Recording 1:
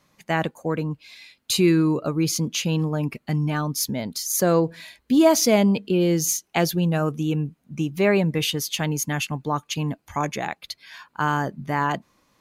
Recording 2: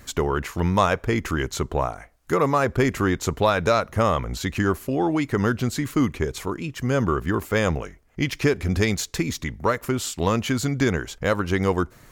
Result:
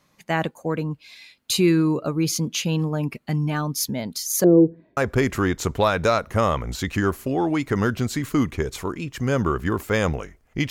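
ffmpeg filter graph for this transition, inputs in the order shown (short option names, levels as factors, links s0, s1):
-filter_complex "[0:a]asettb=1/sr,asplit=3[s0][s1][s2];[s0]atrim=end=4.444[s3];[s1]atrim=start=4.44:end=4.97,asetpts=PTS-STARTPTS,afade=t=in:d=0.004:c=qsin,afade=t=out:st=0.526:d=0.004:c=qsin,lowpass=f=370:t=q:w=3.5[s4];[s2]atrim=start=4.966[s5];[s3][s4]acrossfade=d=0.004:c1=hsin:c2=qsin[s6];[s6][s5]acrossfade=d=0.004:c1=qsin:c2=hsin,apad=whole_dur=10.7,atrim=end=10.7,atrim=end=4.972[s7];[1:a]atrim=start=2.588:end=8.32[s8];[s7][s8]acrossfade=d=0.004:c1=hsin:c2=hsin"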